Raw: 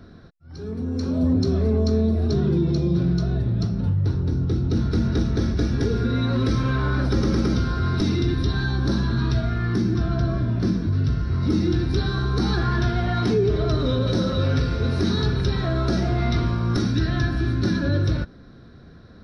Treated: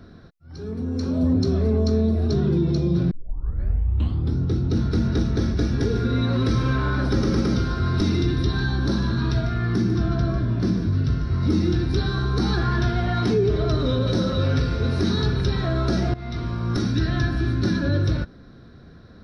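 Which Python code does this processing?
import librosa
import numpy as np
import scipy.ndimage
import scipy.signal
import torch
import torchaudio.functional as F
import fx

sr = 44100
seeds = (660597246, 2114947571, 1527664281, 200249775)

y = fx.echo_single(x, sr, ms=148, db=-11.0, at=(5.73, 11.78))
y = fx.edit(y, sr, fx.tape_start(start_s=3.11, length_s=1.27),
    fx.fade_in_from(start_s=16.14, length_s=1.02, curve='qsin', floor_db=-16.0), tone=tone)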